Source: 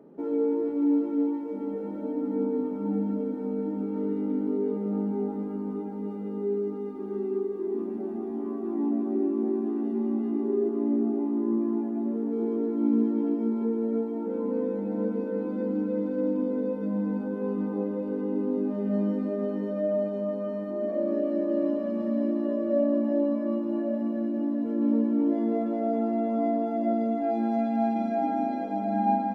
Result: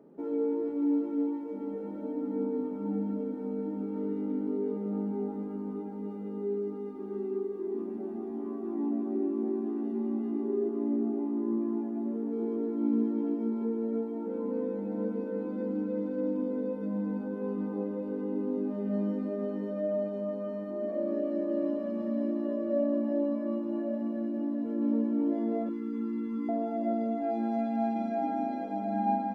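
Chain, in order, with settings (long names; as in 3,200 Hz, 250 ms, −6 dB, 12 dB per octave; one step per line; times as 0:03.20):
0:25.69–0:26.49: elliptic band-stop filter 410–1,000 Hz, stop band 70 dB
level −4 dB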